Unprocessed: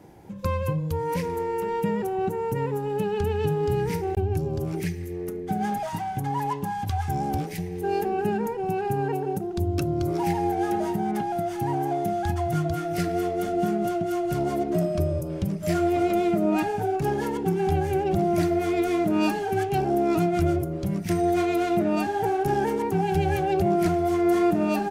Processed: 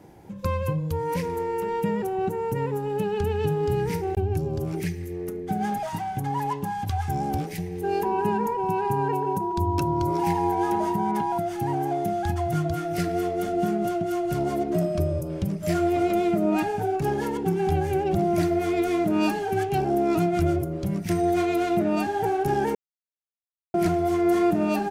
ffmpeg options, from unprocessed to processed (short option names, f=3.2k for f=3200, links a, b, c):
-filter_complex "[0:a]asettb=1/sr,asplit=3[a][b][c];[a]atrim=end=8.034[d];[b]atrim=start=8.03:end=11.38,asetpts=PTS-STARTPTS,afade=t=in:d=0.004:c=qsin,afade=t=out:st=3.346:d=0.004:c=qsin,aeval=exprs='val(0)+0.0447*sin(2*PI*970*n/s)':c=same[e];[c]atrim=start=11.376[f];[d][e]acrossfade=d=0.004:c1=hsin:c2=qsin[g];[g][f]acrossfade=d=0.004:c1=qsin:c2=hsin,asplit=3[h][i][j];[h]atrim=end=22.75,asetpts=PTS-STARTPTS,afade=t=out:st=22.746:d=0.004:c=hsin[k];[i]atrim=start=22.75:end=23.74,asetpts=PTS-STARTPTS,volume=0[l];[j]atrim=start=23.74,asetpts=PTS-STARTPTS,afade=t=in:d=0.004:c=hsin[m];[k][l][m]concat=n=3:v=0:a=1"